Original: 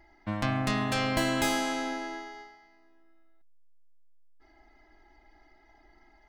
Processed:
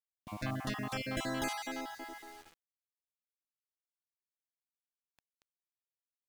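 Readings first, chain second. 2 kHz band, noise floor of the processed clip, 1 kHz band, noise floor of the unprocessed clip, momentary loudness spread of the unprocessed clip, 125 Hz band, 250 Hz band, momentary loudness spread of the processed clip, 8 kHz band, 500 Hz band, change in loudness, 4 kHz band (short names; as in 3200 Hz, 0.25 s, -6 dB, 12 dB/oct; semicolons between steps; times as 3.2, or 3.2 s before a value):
-9.0 dB, under -85 dBFS, -9.5 dB, -62 dBFS, 14 LU, -9.0 dB, -9.5 dB, 14 LU, -8.5 dB, -9.5 dB, -9.0 dB, -9.5 dB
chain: random spectral dropouts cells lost 30%; requantised 8-bit, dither none; gain -7.5 dB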